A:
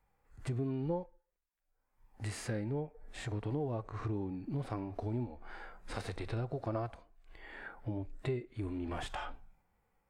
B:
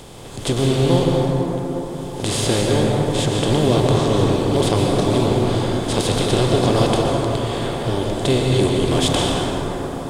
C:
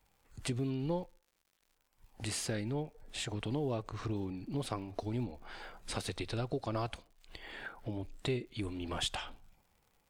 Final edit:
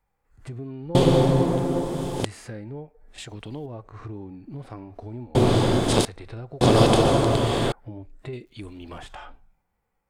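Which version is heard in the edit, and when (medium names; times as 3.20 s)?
A
0.95–2.25 s: from B
3.18–3.66 s: from C
5.35–6.05 s: from B
6.61–7.72 s: from B
8.33–8.98 s: from C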